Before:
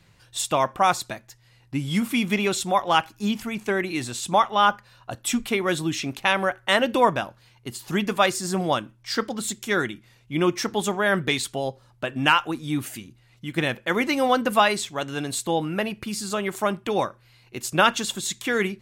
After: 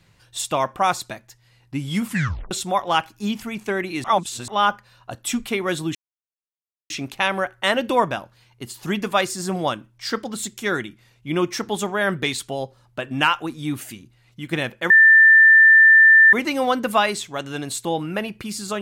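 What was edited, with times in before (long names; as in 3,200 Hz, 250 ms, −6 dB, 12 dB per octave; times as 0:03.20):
0:02.06: tape stop 0.45 s
0:04.04–0:04.48: reverse
0:05.95: splice in silence 0.95 s
0:13.95: insert tone 1,780 Hz −7.5 dBFS 1.43 s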